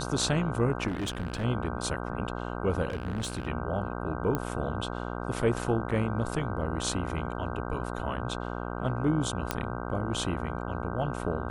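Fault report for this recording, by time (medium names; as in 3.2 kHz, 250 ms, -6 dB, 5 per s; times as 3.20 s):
buzz 60 Hz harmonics 26 -35 dBFS
0.87–1.45 s: clipped -28 dBFS
2.88–3.48 s: clipped -28 dBFS
4.35 s: pop -16 dBFS
9.51 s: pop -11 dBFS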